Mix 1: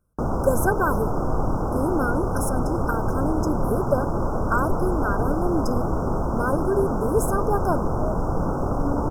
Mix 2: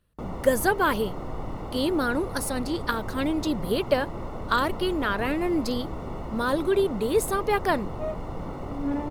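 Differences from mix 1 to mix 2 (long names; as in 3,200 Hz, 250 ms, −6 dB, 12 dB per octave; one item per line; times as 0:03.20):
first sound −10.5 dB
master: remove linear-phase brick-wall band-stop 1,600–5,000 Hz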